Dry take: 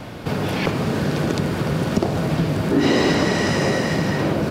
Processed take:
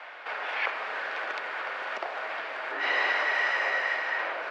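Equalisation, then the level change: high-pass 740 Hz 24 dB/octave; resonant low-pass 1.9 kHz, resonance Q 1.5; peaking EQ 960 Hz -6 dB 1.6 oct; 0.0 dB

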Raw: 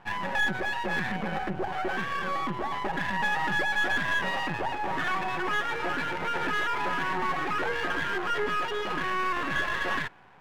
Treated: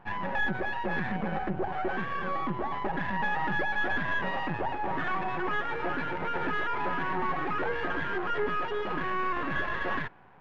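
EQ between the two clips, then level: tape spacing loss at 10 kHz 29 dB; +1.5 dB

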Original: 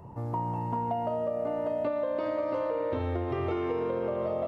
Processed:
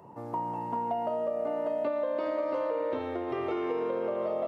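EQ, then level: high-pass 240 Hz 12 dB/octave; 0.0 dB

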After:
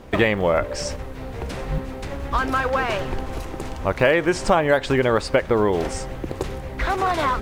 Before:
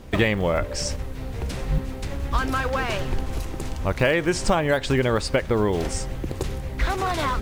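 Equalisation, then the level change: bass shelf 290 Hz -10.5 dB; treble shelf 2.3 kHz -10.5 dB; +7.0 dB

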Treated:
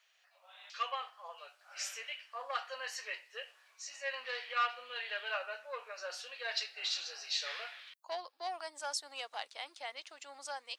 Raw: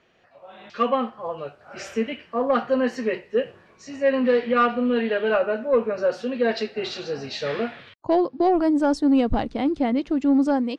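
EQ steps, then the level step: high-pass 610 Hz 24 dB/octave; differentiator; +3.5 dB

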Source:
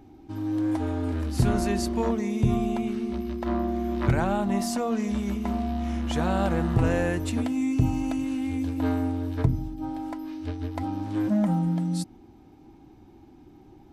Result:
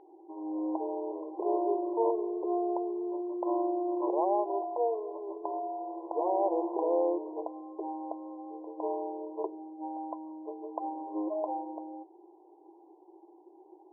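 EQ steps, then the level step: brick-wall FIR band-pass 320–1100 Hz; distance through air 430 m; +2.0 dB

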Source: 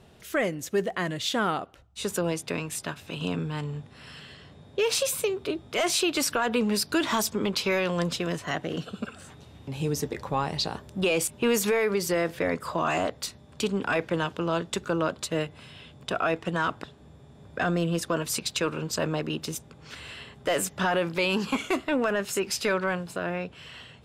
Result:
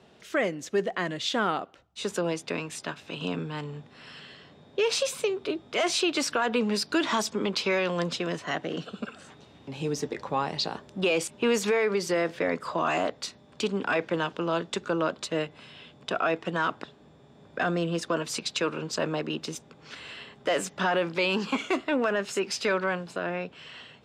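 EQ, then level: three-band isolator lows -14 dB, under 160 Hz, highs -18 dB, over 7.6 kHz; 0.0 dB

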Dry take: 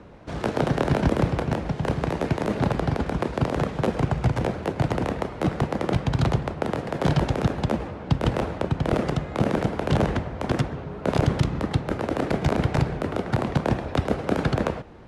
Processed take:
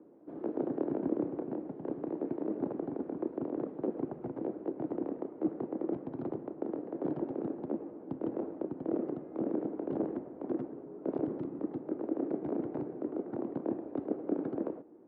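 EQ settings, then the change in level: ladder band-pass 350 Hz, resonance 60%; 0.0 dB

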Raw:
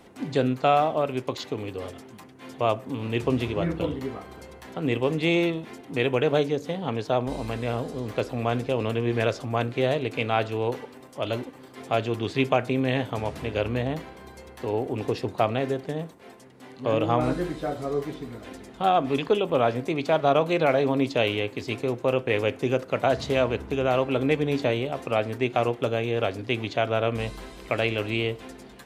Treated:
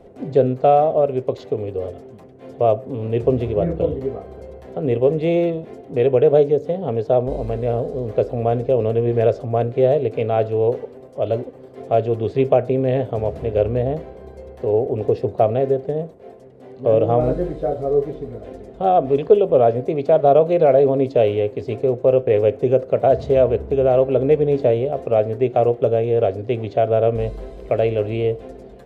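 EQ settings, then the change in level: tilt EQ -2 dB/octave; bass shelf 250 Hz +7 dB; high-order bell 530 Hz +12 dB 1.1 oct; -5.5 dB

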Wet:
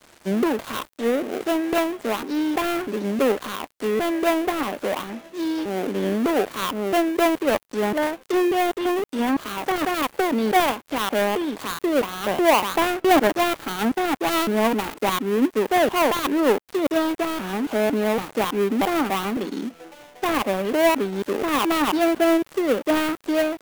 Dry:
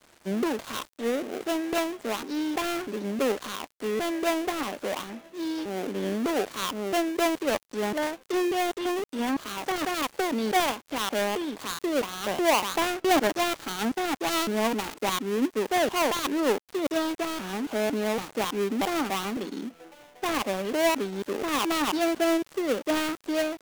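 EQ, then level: dynamic bell 5.9 kHz, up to -7 dB, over -47 dBFS, Q 0.71; +6.0 dB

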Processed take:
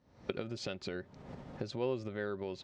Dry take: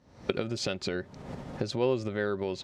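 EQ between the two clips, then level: Bessel low-pass 5.7 kHz, order 2; -7.5 dB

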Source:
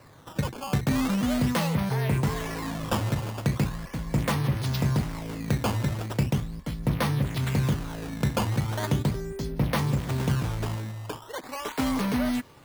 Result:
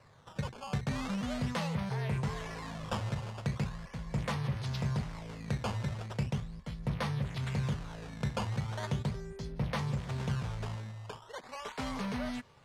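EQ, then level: low-pass 7 kHz 12 dB/octave; peaking EQ 300 Hz -14.5 dB 0.34 oct; -7.5 dB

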